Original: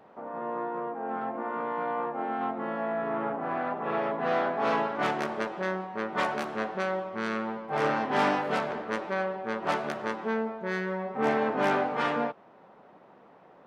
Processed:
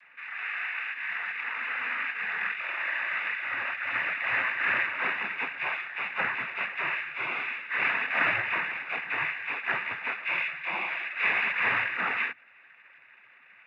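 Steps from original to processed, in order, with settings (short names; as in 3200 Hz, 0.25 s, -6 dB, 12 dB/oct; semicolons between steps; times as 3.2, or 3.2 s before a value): inverted band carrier 2600 Hz; noise vocoder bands 16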